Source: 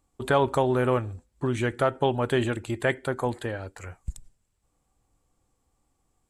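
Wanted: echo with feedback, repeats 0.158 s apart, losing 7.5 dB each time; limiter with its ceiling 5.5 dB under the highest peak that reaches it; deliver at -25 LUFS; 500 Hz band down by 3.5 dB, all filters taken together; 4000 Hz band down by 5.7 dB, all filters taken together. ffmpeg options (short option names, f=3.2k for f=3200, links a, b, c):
-af "equalizer=f=500:t=o:g=-4.5,equalizer=f=4k:t=o:g=-8,alimiter=limit=-17dB:level=0:latency=1,aecho=1:1:158|316|474|632|790:0.422|0.177|0.0744|0.0312|0.0131,volume=4.5dB"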